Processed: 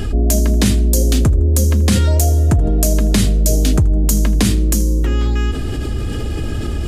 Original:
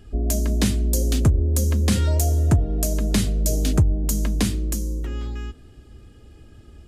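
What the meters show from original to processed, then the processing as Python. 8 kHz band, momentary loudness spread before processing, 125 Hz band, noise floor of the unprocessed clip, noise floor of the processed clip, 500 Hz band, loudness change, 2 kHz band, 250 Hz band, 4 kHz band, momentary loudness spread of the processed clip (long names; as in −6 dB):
+7.5 dB, 9 LU, +6.5 dB, −47 dBFS, −21 dBFS, +8.0 dB, +6.5 dB, +7.5 dB, +7.0 dB, +7.0 dB, 9 LU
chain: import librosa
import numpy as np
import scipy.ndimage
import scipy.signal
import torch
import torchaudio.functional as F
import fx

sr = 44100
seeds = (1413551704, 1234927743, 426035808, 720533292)

p1 = x + fx.echo_feedback(x, sr, ms=80, feedback_pct=35, wet_db=-23.0, dry=0)
p2 = fx.env_flatten(p1, sr, amount_pct=70)
y = p2 * librosa.db_to_amplitude(2.0)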